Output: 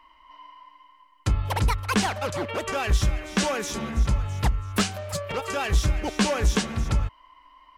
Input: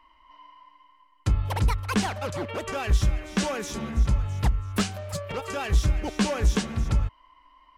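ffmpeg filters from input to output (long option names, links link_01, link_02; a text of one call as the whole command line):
ffmpeg -i in.wav -af "lowshelf=frequency=350:gain=-4.5,volume=4dB" out.wav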